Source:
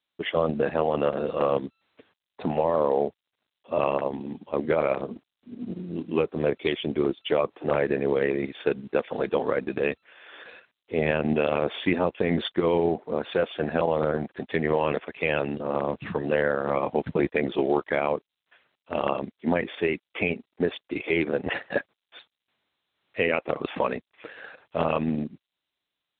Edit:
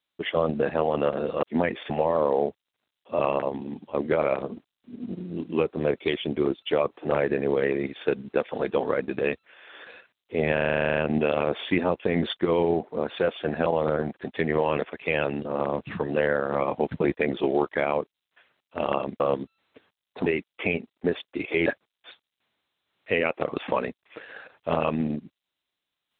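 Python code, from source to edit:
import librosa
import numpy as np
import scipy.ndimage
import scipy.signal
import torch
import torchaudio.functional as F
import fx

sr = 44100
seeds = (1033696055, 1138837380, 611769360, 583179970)

y = fx.edit(x, sr, fx.swap(start_s=1.43, length_s=1.06, other_s=19.35, other_length_s=0.47),
    fx.stutter(start_s=11.12, slice_s=0.04, count=12),
    fx.cut(start_s=21.22, length_s=0.52), tone=tone)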